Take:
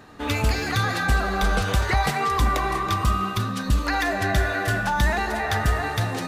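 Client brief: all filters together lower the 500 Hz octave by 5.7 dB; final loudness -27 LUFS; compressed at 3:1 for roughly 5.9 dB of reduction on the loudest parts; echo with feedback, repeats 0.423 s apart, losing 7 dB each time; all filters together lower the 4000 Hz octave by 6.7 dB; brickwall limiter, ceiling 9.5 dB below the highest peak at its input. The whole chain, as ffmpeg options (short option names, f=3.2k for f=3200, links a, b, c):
-af "equalizer=f=500:t=o:g=-8,equalizer=f=4k:t=o:g=-8,acompressor=threshold=-24dB:ratio=3,alimiter=limit=-23.5dB:level=0:latency=1,aecho=1:1:423|846|1269|1692|2115:0.447|0.201|0.0905|0.0407|0.0183,volume=4dB"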